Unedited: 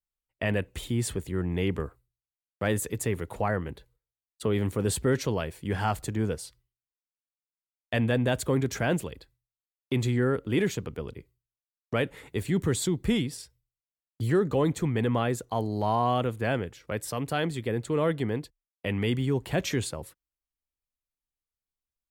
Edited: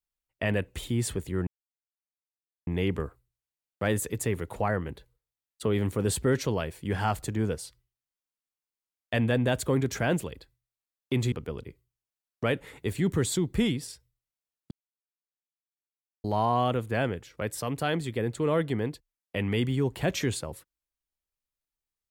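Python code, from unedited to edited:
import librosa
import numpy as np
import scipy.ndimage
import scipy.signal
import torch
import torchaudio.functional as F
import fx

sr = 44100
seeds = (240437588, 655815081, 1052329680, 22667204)

y = fx.edit(x, sr, fx.insert_silence(at_s=1.47, length_s=1.2),
    fx.cut(start_s=10.12, length_s=0.7),
    fx.silence(start_s=14.21, length_s=1.53), tone=tone)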